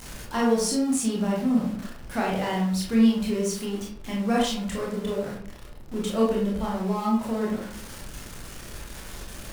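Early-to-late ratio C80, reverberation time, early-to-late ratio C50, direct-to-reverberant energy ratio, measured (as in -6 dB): 6.5 dB, 0.60 s, 2.5 dB, -3.5 dB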